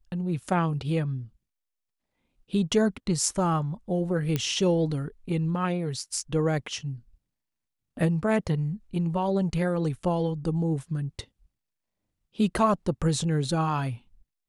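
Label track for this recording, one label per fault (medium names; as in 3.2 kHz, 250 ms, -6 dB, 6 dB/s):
4.360000	4.360000	pop -13 dBFS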